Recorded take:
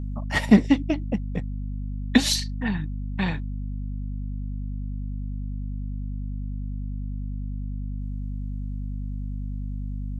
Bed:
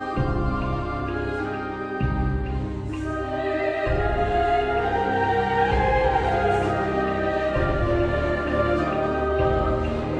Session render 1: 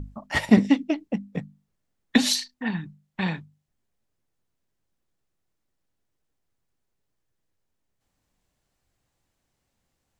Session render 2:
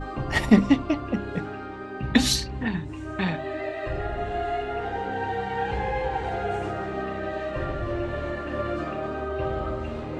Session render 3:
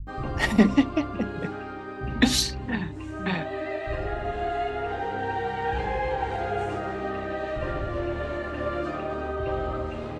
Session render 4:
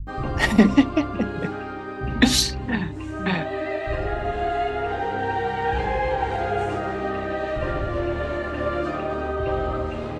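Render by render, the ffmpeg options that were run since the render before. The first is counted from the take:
-af "bandreject=f=50:t=h:w=6,bandreject=f=100:t=h:w=6,bandreject=f=150:t=h:w=6,bandreject=f=200:t=h:w=6,bandreject=f=250:t=h:w=6"
-filter_complex "[1:a]volume=-7dB[a];[0:a][a]amix=inputs=2:normalize=0"
-filter_complex "[0:a]acrossover=split=150[a][b];[b]adelay=70[c];[a][c]amix=inputs=2:normalize=0"
-af "volume=4dB,alimiter=limit=-3dB:level=0:latency=1"

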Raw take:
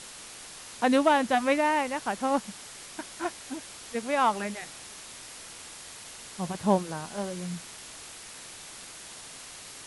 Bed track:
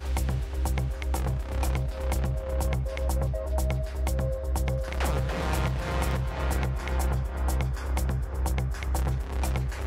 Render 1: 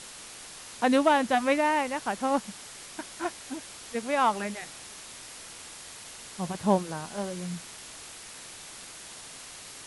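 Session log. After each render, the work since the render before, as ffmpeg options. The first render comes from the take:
-af anull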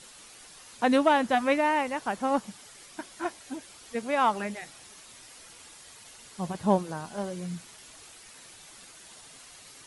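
-af "afftdn=nr=8:nf=-45"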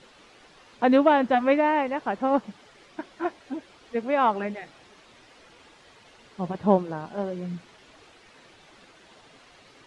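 -af "lowpass=3.4k,equalizer=f=400:w=0.69:g=5.5"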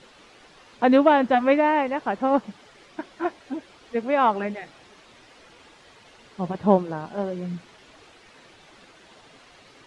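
-af "volume=2dB"

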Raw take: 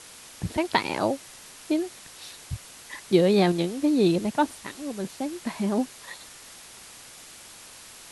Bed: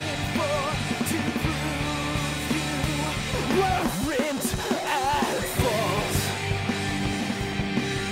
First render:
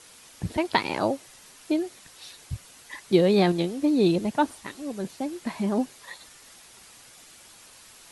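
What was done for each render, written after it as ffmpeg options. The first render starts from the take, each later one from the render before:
-af "afftdn=nr=6:nf=-47"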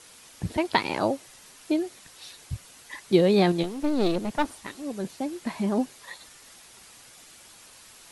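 -filter_complex "[0:a]asettb=1/sr,asplit=3[a][b][c];[a]atrim=end=3.634[d];[b]atrim=start=3.63:end=4.84,asetpts=PTS-STARTPTS,afade=t=in:d=0.004:c=qsin,afade=t=out:st=1.206:d=0.004:c=qsin,aeval=exprs='clip(val(0),-1,0.0237)':c=same[e];[c]atrim=start=4.836[f];[d][e]acrossfade=d=0.004:c1=hsin:c2=qsin[g];[g][f]acrossfade=d=0.004:c1=qsin:c2=hsin"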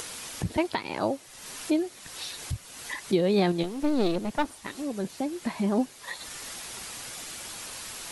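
-af "acompressor=mode=upward:threshold=-28dB:ratio=2.5,alimiter=limit=-14dB:level=0:latency=1:release=430"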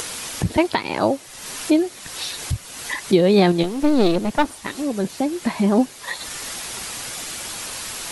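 -af "volume=8.5dB"

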